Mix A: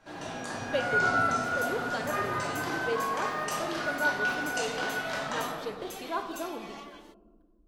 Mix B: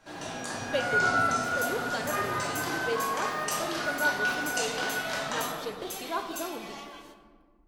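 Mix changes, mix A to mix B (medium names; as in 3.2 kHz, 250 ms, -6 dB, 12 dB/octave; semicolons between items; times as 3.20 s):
second sound: send on; master: add treble shelf 4.1 kHz +7 dB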